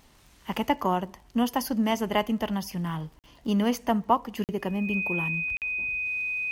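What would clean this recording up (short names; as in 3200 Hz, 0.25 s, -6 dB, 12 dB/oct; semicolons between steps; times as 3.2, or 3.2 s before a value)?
de-click; notch 2500 Hz, Q 30; interpolate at 3.19/4.44/5.57, 48 ms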